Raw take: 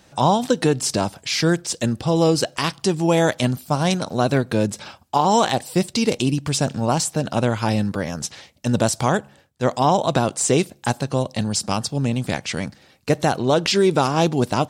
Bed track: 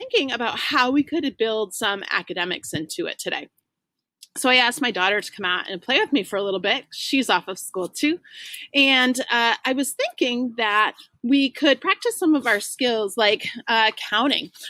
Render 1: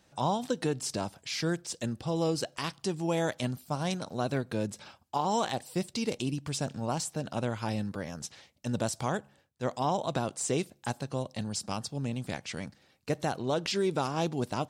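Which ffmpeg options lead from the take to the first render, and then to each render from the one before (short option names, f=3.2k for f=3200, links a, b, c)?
-af "volume=-12dB"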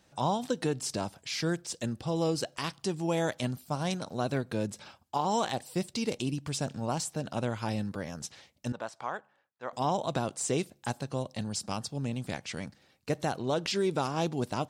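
-filter_complex "[0:a]asettb=1/sr,asplit=3[a][b][c];[a]atrim=end=8.724[d];[b]atrim=start=8.72:end=9.73,asetpts=PTS-STARTPTS,afade=t=in:d=0.004:c=qsin,afade=t=out:st=1.006:d=0.004:c=qsin,bandpass=f=1.2k:t=q:w=1.1[e];[c]atrim=start=9.726[f];[d][e]acrossfade=d=0.004:c1=hsin:c2=qsin[g];[g][f]acrossfade=d=0.004:c1=qsin:c2=hsin"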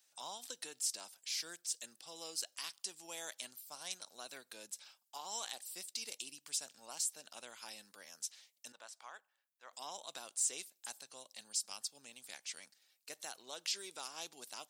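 -af "highpass=210,aderivative"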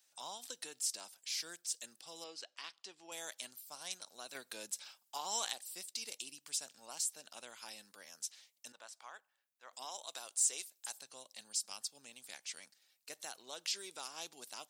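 -filter_complex "[0:a]asettb=1/sr,asplit=3[a][b][c];[a]atrim=end=2.244[d];[b]atrim=start=2.24:end=3.12,asetpts=PTS-STARTPTS,afade=t=in:d=0.004:c=qsin,afade=t=out:st=0.876:d=0.004:c=qsin,highpass=210,lowpass=3.6k[e];[c]atrim=start=3.116[f];[d][e]acrossfade=d=0.004:c1=hsin:c2=qsin[g];[g][f]acrossfade=d=0.004:c1=qsin:c2=hsin,asettb=1/sr,asplit=3[h][i][j];[h]atrim=end=9.854[k];[i]atrim=start=9.85:end=10.99,asetpts=PTS-STARTPTS,afade=t=in:d=0.004:c=qsin,afade=t=out:st=1.136:d=0.004:c=qsin,bass=f=250:g=-14,treble=f=4k:g=3[l];[j]atrim=start=10.986[m];[k][l]acrossfade=d=0.004:c1=hsin:c2=qsin[n];[n][m]acrossfade=d=0.004:c1=qsin:c2=hsin,asplit=3[o][p][q];[o]atrim=end=4.352[r];[p]atrim=start=4.348:end=5.532,asetpts=PTS-STARTPTS,volume=5dB[s];[q]atrim=start=5.528[t];[r][s]acrossfade=d=0.004:c1=hsin:c2=hsin[u];[u][t]acrossfade=d=0.004:c1=hsin:c2=hsin"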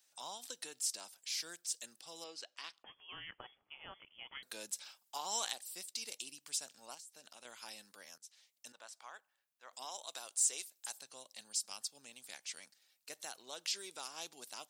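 -filter_complex "[0:a]asettb=1/sr,asplit=3[a][b][c];[a]atrim=end=2.834[d];[b]atrim=start=2.83:end=4.43,asetpts=PTS-STARTPTS,afade=t=in:d=0.004:c=qsin,afade=t=out:st=1.596:d=0.004:c=qsin,lowpass=f=3.1k:t=q:w=0.5098,lowpass=f=3.1k:t=q:w=0.6013,lowpass=f=3.1k:t=q:w=0.9,lowpass=f=3.1k:t=q:w=2.563,afreqshift=-3600[e];[c]atrim=start=4.426[f];[d][e]acrossfade=d=0.004:c1=hsin:c2=qsin[g];[g][f]acrossfade=d=0.004:c1=qsin:c2=hsin,asettb=1/sr,asplit=3[h][i][j];[h]atrim=end=6.944[k];[i]atrim=start=6.94:end=7.45,asetpts=PTS-STARTPTS,afade=t=in:d=0.004:c=qsin,afade=t=out:st=0.506:d=0.004:c=qsin,acompressor=threshold=-51dB:ratio=8:attack=3.2:release=140:knee=1:detection=peak[l];[j]atrim=start=7.446[m];[k][l]acrossfade=d=0.004:c1=hsin:c2=qsin[n];[n][m]acrossfade=d=0.004:c1=qsin:c2=hsin,asplit=2[o][p];[o]atrim=end=8.18,asetpts=PTS-STARTPTS,afade=t=out:st=8.176:d=0.004:c=hsin:silence=0.0794328[q];[p]atrim=start=8.18,asetpts=PTS-STARTPTS,afade=t=in:d=0.76:c=qsin:silence=0.0794328[r];[q][r]concat=n=2:v=0:a=1"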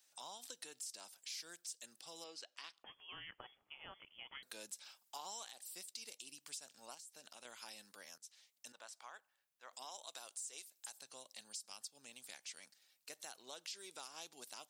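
-af "alimiter=level_in=4dB:limit=-24dB:level=0:latency=1:release=119,volume=-4dB,acompressor=threshold=-50dB:ratio=2"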